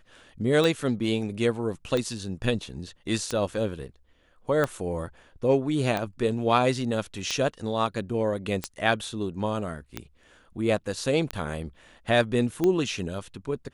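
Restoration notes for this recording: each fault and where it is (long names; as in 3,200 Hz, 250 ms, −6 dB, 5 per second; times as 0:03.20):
scratch tick 45 rpm −13 dBFS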